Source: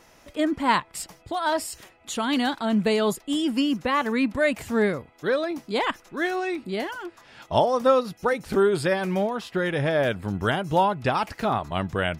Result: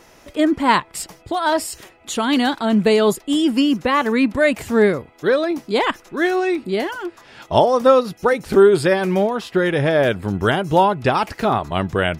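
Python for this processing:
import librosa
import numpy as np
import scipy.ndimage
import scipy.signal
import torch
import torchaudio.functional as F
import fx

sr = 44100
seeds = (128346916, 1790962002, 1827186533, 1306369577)

y = fx.peak_eq(x, sr, hz=380.0, db=4.0, octaves=0.6)
y = y * 10.0 ** (5.5 / 20.0)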